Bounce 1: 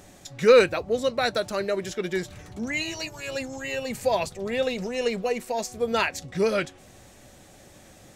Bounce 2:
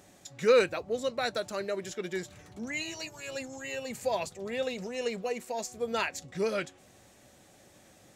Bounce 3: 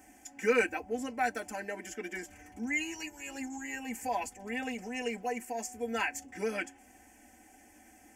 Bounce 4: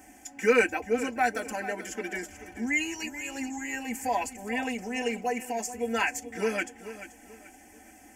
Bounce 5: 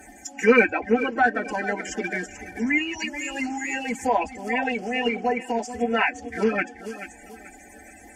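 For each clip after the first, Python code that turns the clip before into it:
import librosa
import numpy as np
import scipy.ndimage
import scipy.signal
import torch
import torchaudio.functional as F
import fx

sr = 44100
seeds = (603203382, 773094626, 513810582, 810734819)

y1 = fx.highpass(x, sr, hz=110.0, slope=6)
y1 = fx.dynamic_eq(y1, sr, hz=7100.0, q=5.2, threshold_db=-56.0, ratio=4.0, max_db=5)
y1 = y1 * librosa.db_to_amplitude(-6.5)
y2 = fx.fixed_phaser(y1, sr, hz=790.0, stages=8)
y2 = y2 + 0.99 * np.pad(y2, (int(3.9 * sr / 1000.0), 0))[:len(y2)]
y3 = fx.echo_feedback(y2, sr, ms=434, feedback_pct=31, wet_db=-13.5)
y3 = y3 * librosa.db_to_amplitude(5.0)
y4 = fx.spec_quant(y3, sr, step_db=30)
y4 = fx.env_lowpass_down(y4, sr, base_hz=2500.0, full_db=-26.5)
y4 = y4 * librosa.db_to_amplitude(7.0)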